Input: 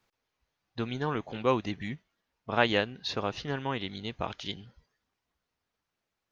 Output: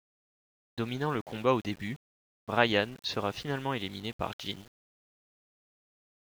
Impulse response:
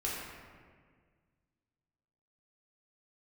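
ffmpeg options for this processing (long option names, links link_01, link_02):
-af "aeval=exprs='val(0)*gte(abs(val(0)),0.00447)':channel_layout=same"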